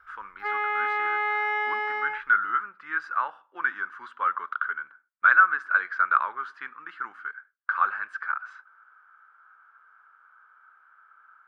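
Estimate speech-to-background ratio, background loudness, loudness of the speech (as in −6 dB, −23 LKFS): 1.0 dB, −27.0 LKFS, −26.0 LKFS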